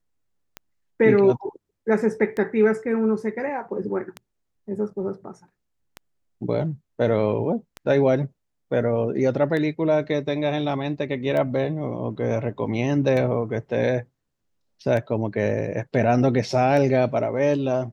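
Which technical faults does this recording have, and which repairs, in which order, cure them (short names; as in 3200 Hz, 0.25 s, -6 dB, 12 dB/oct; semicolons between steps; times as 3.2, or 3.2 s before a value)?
tick 33 1/3 rpm -17 dBFS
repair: de-click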